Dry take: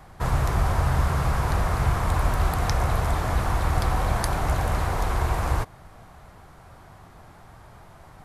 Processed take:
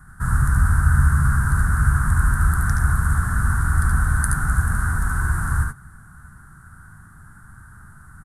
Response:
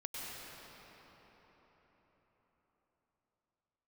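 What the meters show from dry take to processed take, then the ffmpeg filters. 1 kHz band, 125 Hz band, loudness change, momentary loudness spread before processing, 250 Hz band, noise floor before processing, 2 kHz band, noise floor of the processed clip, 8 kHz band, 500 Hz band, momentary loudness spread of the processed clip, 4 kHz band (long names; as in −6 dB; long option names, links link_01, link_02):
−1.0 dB, +5.5 dB, +4.5 dB, 2 LU, +3.0 dB, −49 dBFS, +8.0 dB, −46 dBFS, +7.0 dB, −16.0 dB, 5 LU, below −10 dB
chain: -filter_complex "[0:a]firequalizer=gain_entry='entry(200,0);entry(360,-15);entry(560,-27);entry(1500,8);entry(2300,-25);entry(5400,-15);entry(9200,8);entry(13000,-5)':delay=0.05:min_phase=1,asplit=2[link_01][link_02];[link_02]aecho=0:1:73|87:0.631|0.422[link_03];[link_01][link_03]amix=inputs=2:normalize=0,volume=3dB"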